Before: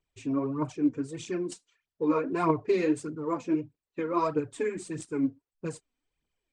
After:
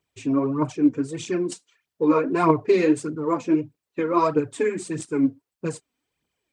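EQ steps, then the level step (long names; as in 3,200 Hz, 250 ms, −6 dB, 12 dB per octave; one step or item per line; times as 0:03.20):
high-pass filter 91 Hz
+7.0 dB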